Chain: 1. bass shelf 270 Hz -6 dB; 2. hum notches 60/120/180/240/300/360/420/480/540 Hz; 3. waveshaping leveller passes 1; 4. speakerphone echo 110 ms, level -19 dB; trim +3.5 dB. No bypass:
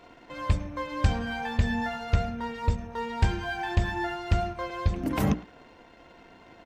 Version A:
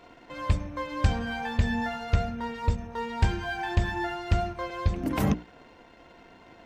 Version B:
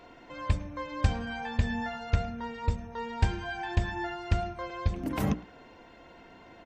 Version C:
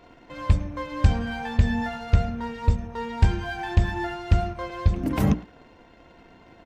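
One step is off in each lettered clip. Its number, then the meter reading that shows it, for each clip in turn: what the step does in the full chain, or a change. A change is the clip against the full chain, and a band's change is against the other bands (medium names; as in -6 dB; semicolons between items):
4, echo-to-direct -20.5 dB to none; 3, crest factor change +3.0 dB; 1, 125 Hz band +5.0 dB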